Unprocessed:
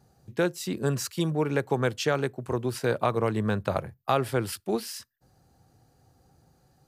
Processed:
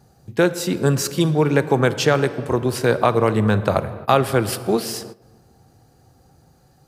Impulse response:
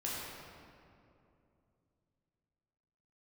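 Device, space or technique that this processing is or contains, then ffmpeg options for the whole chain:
keyed gated reverb: -filter_complex "[0:a]asplit=3[link_01][link_02][link_03];[1:a]atrim=start_sample=2205[link_04];[link_02][link_04]afir=irnorm=-1:irlink=0[link_05];[link_03]apad=whole_len=303338[link_06];[link_05][link_06]sidechaingate=range=-15dB:threshold=-55dB:ratio=16:detection=peak,volume=-14dB[link_07];[link_01][link_07]amix=inputs=2:normalize=0,volume=7.5dB"

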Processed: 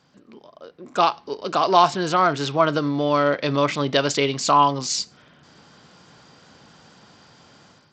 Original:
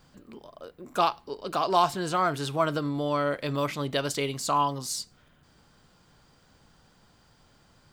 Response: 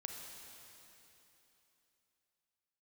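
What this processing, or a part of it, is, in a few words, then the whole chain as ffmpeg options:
Bluetooth headset: -af "highpass=140,dynaudnorm=framelen=590:gausssize=3:maxgain=11.5dB,aresample=16000,aresample=44100" -ar 32000 -c:a sbc -b:a 64k

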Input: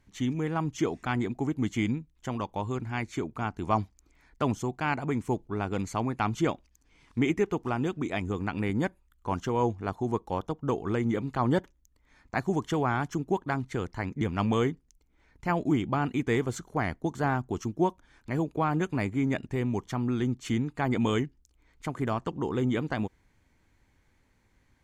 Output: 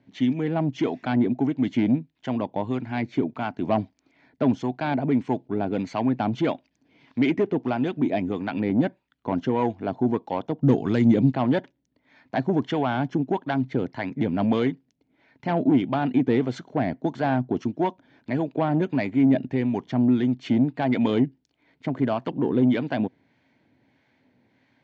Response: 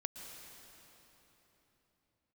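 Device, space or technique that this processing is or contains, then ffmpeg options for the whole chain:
guitar amplifier with harmonic tremolo: -filter_complex "[0:a]acrossover=split=700[link_01][link_02];[link_01]aeval=exprs='val(0)*(1-0.5/2+0.5/2*cos(2*PI*1.6*n/s))':channel_layout=same[link_03];[link_02]aeval=exprs='val(0)*(1-0.5/2-0.5/2*cos(2*PI*1.6*n/s))':channel_layout=same[link_04];[link_03][link_04]amix=inputs=2:normalize=0,asoftclip=type=tanh:threshold=-23.5dB,highpass=87,equalizer=frequency=130:width_type=q:width=4:gain=5,equalizer=frequency=260:width_type=q:width=4:gain=8,equalizer=frequency=640:width_type=q:width=4:gain=7,equalizer=frequency=1200:width_type=q:width=4:gain=-8,lowpass=frequency=4400:width=0.5412,lowpass=frequency=4400:width=1.3066,asettb=1/sr,asplit=3[link_05][link_06][link_07];[link_05]atrim=end=10.614[link_08];[link_06]atrim=start=10.61:end=11.32,asetpts=PTS-STARTPTS,afade=type=in:duration=0.004:curve=qsin,afade=type=out:start_time=0.706:duration=0.004:curve=qsin,bass=frequency=250:gain=9,treble=frequency=4000:gain=14[link_09];[link_07]atrim=start=11.316[link_10];[link_08][link_09]acrossfade=duration=0.004:curve1=hsin:curve2=qsin[link_11];[link_11][link_10]acrossfade=duration=0.004:curve1=qsin:curve2=hsin,highpass=140,volume=7dB"

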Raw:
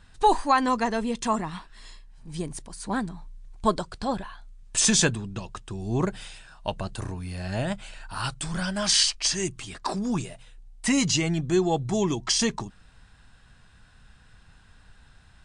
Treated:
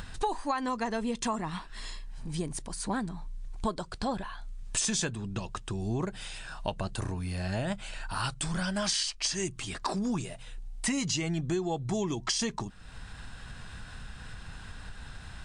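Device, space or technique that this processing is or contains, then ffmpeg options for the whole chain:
upward and downward compression: -af "acompressor=mode=upward:threshold=-31dB:ratio=2.5,acompressor=threshold=-27dB:ratio=8"

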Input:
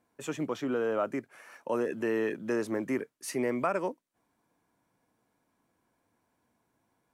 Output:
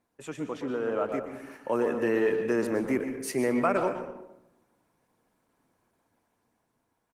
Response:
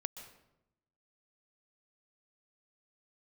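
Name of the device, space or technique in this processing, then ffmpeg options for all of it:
speakerphone in a meeting room: -filter_complex "[1:a]atrim=start_sample=2205[link_01];[0:a][link_01]afir=irnorm=-1:irlink=0,asplit=2[link_02][link_03];[link_03]adelay=120,highpass=300,lowpass=3400,asoftclip=type=hard:threshold=-26.5dB,volume=-9dB[link_04];[link_02][link_04]amix=inputs=2:normalize=0,dynaudnorm=framelen=370:gausssize=7:maxgain=5.5dB" -ar 48000 -c:a libopus -b:a 20k

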